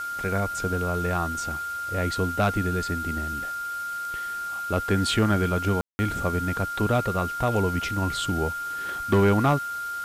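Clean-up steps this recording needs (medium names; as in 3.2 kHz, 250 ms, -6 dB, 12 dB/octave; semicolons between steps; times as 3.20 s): clip repair -14 dBFS; band-stop 1.4 kHz, Q 30; room tone fill 5.81–5.99 s; noise print and reduce 30 dB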